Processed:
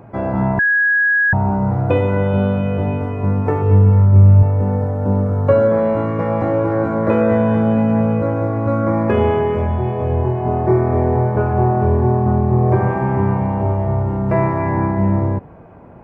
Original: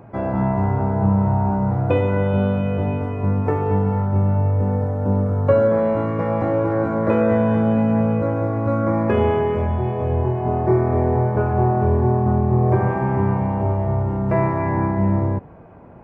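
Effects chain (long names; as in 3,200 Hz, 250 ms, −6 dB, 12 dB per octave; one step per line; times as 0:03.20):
0:00.59–0:01.33: beep over 1,660 Hz −14 dBFS
0:03.62–0:04.43: thirty-one-band graphic EQ 100 Hz +9 dB, 800 Hz −10 dB, 1,600 Hz −6 dB
level +2.5 dB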